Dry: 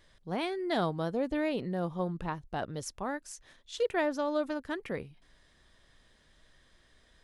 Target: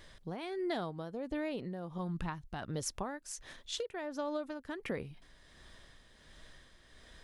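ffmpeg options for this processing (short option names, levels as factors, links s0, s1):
-filter_complex "[0:a]asettb=1/sr,asplit=3[s0][s1][s2];[s0]atrim=end=1.984[s3];[s1]atrim=start=1.98:end=2.69,asetpts=PTS-STARTPTS,afade=t=in:d=0.004:c=qsin,afade=t=out:st=0.706:d=0.004:c=qsin,equalizer=f=490:t=o:w=1.2:g=-10.5[s4];[s2]atrim=start=2.686[s5];[s3][s4]acrossfade=d=0.004:c1=hsin:c2=qsin[s6];[s6][s5]acrossfade=d=0.004:c1=qsin:c2=hsin,acompressor=threshold=0.01:ratio=12,tremolo=f=1.4:d=0.48,volume=2.37"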